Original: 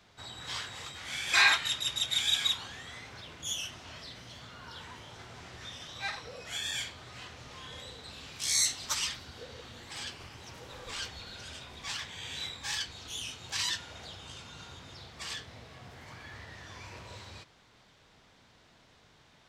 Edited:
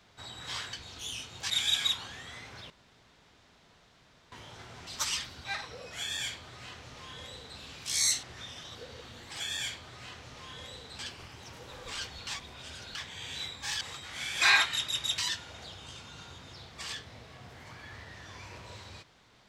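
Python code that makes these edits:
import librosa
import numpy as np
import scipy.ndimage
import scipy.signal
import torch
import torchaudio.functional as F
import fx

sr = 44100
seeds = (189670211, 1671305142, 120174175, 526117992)

y = fx.edit(x, sr, fx.swap(start_s=0.73, length_s=1.37, other_s=12.82, other_length_s=0.77),
    fx.room_tone_fill(start_s=3.3, length_s=1.62),
    fx.swap(start_s=5.47, length_s=0.52, other_s=8.77, other_length_s=0.58),
    fx.duplicate(start_s=6.54, length_s=1.59, to_s=10.0),
    fx.reverse_span(start_s=11.28, length_s=0.68), tone=tone)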